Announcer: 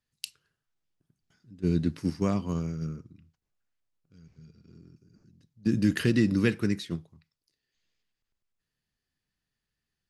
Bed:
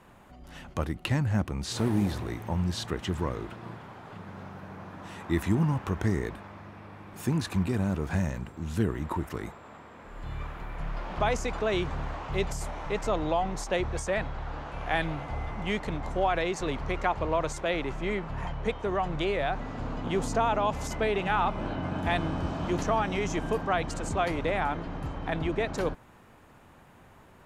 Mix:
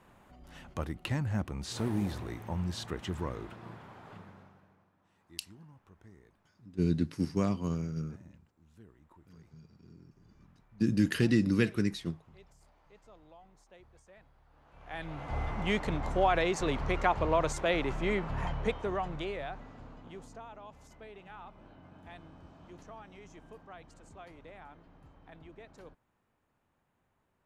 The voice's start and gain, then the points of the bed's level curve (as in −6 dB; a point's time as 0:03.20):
5.15 s, −2.5 dB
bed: 0:04.16 −5.5 dB
0:04.94 −29 dB
0:14.48 −29 dB
0:15.37 0 dB
0:18.55 0 dB
0:20.48 −22.5 dB